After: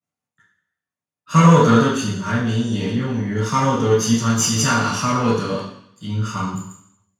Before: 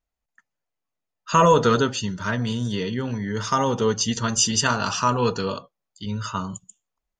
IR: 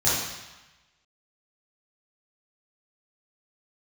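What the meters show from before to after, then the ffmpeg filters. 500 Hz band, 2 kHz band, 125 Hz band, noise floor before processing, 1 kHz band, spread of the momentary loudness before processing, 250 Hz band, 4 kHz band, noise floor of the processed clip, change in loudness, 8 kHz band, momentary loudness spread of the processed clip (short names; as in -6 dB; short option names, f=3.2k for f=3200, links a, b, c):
+2.0 dB, +3.0 dB, +8.5 dB, -83 dBFS, +2.0 dB, 13 LU, +7.5 dB, 0.0 dB, under -85 dBFS, +4.0 dB, +2.0 dB, 15 LU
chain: -filter_complex "[0:a]aeval=exprs='if(lt(val(0),0),0.447*val(0),val(0))':c=same,highpass=100[a];[1:a]atrim=start_sample=2205,asetrate=66150,aresample=44100[b];[a][b]afir=irnorm=-1:irlink=0,volume=-7.5dB"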